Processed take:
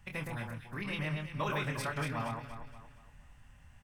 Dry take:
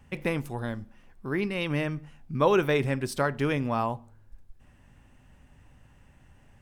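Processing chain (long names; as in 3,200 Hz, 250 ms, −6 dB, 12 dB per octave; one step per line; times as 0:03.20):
parametric band 370 Hz −14 dB 1.6 octaves
mains-hum notches 60/120/180/240 Hz
in parallel at +2.5 dB: downward compressor 16 to 1, threshold −39 dBFS, peak gain reduction 16 dB
on the sum: phase-vocoder stretch with locked phases 0.58×
double-tracking delay 26 ms −6 dB
on a send: delay that swaps between a low-pass and a high-pass 117 ms, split 1,900 Hz, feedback 64%, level −3 dB
on the sum: level −7.5 dB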